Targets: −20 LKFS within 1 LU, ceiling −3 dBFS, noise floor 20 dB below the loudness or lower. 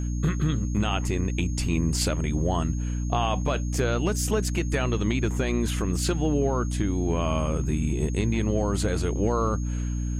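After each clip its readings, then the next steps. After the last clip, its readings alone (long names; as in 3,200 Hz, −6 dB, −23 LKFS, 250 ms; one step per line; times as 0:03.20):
mains hum 60 Hz; hum harmonics up to 300 Hz; level of the hum −25 dBFS; interfering tone 6,500 Hz; level of the tone −45 dBFS; integrated loudness −26.0 LKFS; sample peak −10.5 dBFS; target loudness −20.0 LKFS
→ hum removal 60 Hz, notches 5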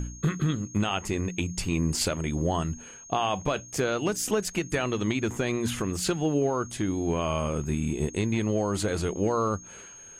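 mains hum none found; interfering tone 6,500 Hz; level of the tone −45 dBFS
→ notch filter 6,500 Hz, Q 30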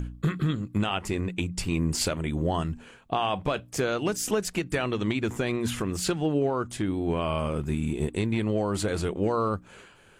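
interfering tone none found; integrated loudness −28.5 LKFS; sample peak −12.5 dBFS; target loudness −20.0 LKFS
→ level +8.5 dB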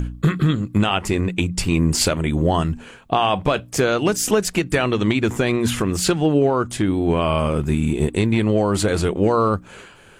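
integrated loudness −20.0 LKFS; sample peak −4.0 dBFS; background noise floor −45 dBFS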